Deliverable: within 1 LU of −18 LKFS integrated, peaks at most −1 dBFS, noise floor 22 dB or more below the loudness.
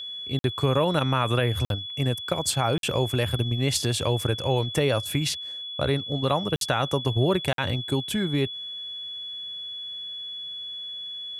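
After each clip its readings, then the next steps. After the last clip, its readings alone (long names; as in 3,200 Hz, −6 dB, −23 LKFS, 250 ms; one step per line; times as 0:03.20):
number of dropouts 5; longest dropout 52 ms; interfering tone 3,400 Hz; level of the tone −33 dBFS; integrated loudness −26.0 LKFS; sample peak −10.0 dBFS; target loudness −18.0 LKFS
→ repair the gap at 0:00.39/0:01.65/0:02.78/0:06.56/0:07.53, 52 ms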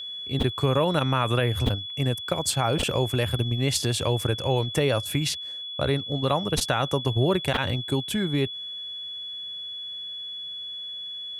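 number of dropouts 0; interfering tone 3,400 Hz; level of the tone −33 dBFS
→ notch filter 3,400 Hz, Q 30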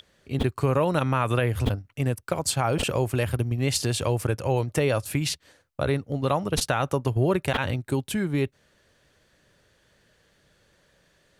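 interfering tone none found; integrated loudness −26.0 LKFS; sample peak −10.5 dBFS; target loudness −18.0 LKFS
→ level +8 dB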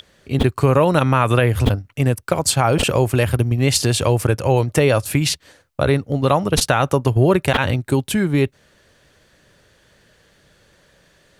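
integrated loudness −18.0 LKFS; sample peak −2.5 dBFS; background noise floor −57 dBFS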